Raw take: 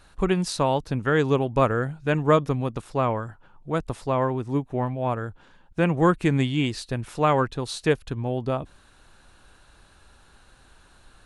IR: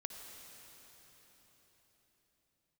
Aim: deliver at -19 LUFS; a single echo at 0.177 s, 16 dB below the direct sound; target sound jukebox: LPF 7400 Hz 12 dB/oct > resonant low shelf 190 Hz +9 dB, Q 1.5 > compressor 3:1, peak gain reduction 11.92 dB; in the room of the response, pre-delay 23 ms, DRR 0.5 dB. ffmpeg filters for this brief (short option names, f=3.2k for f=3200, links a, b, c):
-filter_complex "[0:a]aecho=1:1:177:0.158,asplit=2[a][b];[1:a]atrim=start_sample=2205,adelay=23[c];[b][c]afir=irnorm=-1:irlink=0,volume=1.5dB[d];[a][d]amix=inputs=2:normalize=0,lowpass=7.4k,lowshelf=f=190:t=q:w=1.5:g=9,acompressor=threshold=-22dB:ratio=3,volume=5.5dB"